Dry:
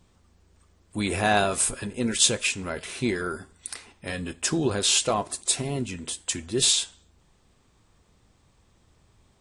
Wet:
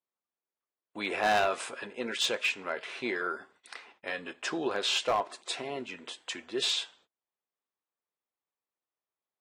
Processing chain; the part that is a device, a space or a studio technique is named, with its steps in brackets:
walkie-talkie (band-pass filter 500–3,000 Hz; hard clipping −20.5 dBFS, distortion −14 dB; noise gate −60 dBFS, range −28 dB)

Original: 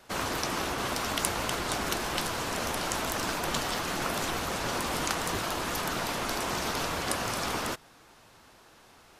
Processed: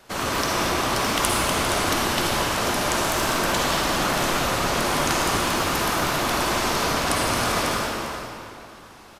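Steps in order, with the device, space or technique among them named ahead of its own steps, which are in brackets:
cave (single-tap delay 400 ms −11.5 dB; convolution reverb RT60 2.6 s, pre-delay 45 ms, DRR −3 dB)
level +3.5 dB

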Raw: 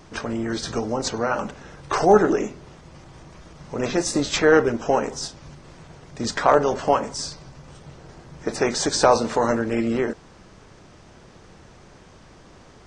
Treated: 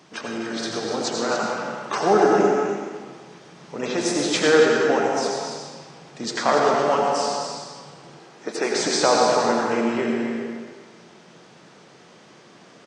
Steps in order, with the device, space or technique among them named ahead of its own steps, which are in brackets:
stadium PA (high-pass filter 150 Hz 24 dB per octave; parametric band 3,300 Hz +4.5 dB 1.6 octaves; loudspeakers that aren't time-aligned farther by 86 metres −11 dB, 98 metres −9 dB; convolution reverb RT60 1.7 s, pre-delay 76 ms, DRR −0.5 dB)
0:08.19–0:08.76: high-pass filter 220 Hz 12 dB per octave
level −4 dB

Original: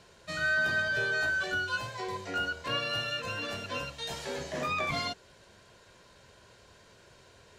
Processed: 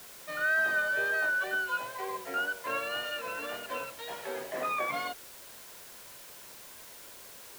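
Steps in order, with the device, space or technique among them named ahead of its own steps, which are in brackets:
wax cylinder (band-pass filter 380–2,200 Hz; tape wow and flutter; white noise bed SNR 15 dB)
level +1.5 dB

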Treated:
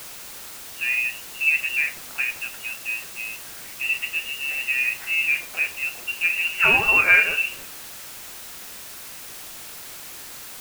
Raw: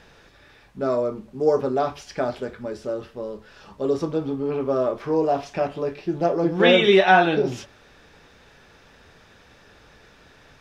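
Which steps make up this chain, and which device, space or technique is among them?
scrambled radio voice (band-pass filter 380–2,900 Hz; voice inversion scrambler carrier 3,100 Hz; white noise bed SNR 13 dB)

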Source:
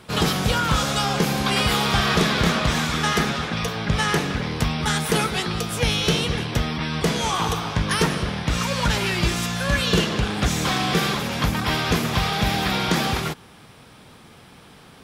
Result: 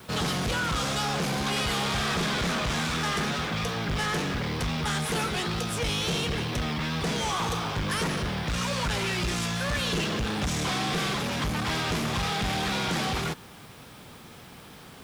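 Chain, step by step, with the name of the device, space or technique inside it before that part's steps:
compact cassette (soft clipping −25 dBFS, distortion −8 dB; low-pass filter 11,000 Hz 12 dB per octave; tape wow and flutter; white noise bed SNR 29 dB)

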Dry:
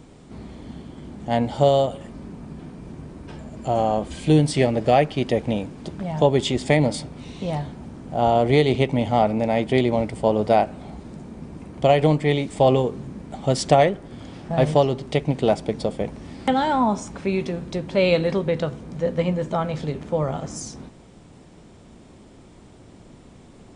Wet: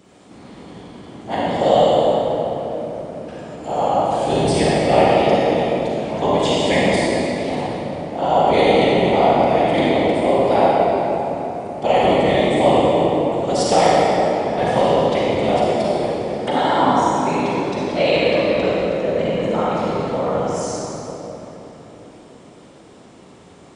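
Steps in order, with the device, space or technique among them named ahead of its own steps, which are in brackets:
whispering ghost (random phases in short frames; high-pass filter 380 Hz 6 dB per octave; convolution reverb RT60 3.8 s, pre-delay 36 ms, DRR −7 dB)
level −1 dB

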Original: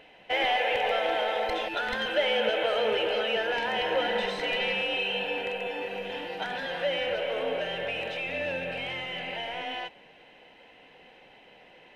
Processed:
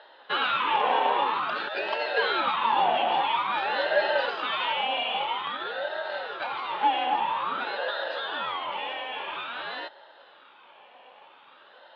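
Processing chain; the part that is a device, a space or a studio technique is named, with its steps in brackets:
voice changer toy (ring modulator whose carrier an LFO sweeps 680 Hz, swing 65%, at 0.5 Hz; loudspeaker in its box 540–3,800 Hz, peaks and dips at 560 Hz +8 dB, 850 Hz +8 dB, 2,100 Hz −7 dB)
level +4.5 dB

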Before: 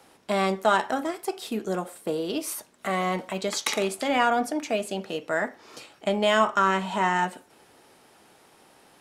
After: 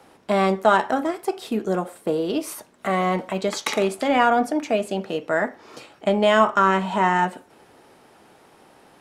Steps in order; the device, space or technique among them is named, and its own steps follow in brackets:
behind a face mask (high-shelf EQ 2,500 Hz −8 dB)
level +5.5 dB

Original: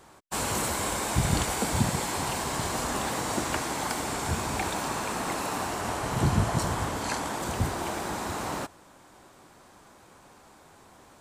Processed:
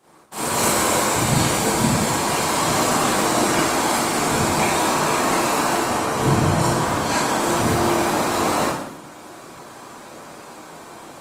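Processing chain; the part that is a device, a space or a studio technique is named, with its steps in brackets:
far-field microphone of a smart speaker (convolution reverb RT60 0.80 s, pre-delay 28 ms, DRR −9 dB; high-pass filter 140 Hz 12 dB per octave; automatic gain control gain up to 11 dB; level −5 dB; Opus 24 kbit/s 48,000 Hz)

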